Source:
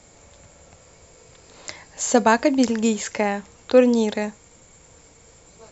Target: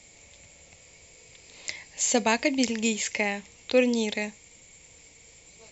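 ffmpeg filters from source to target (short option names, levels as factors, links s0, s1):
-af "highshelf=f=1800:t=q:w=3:g=6.5,volume=0.447"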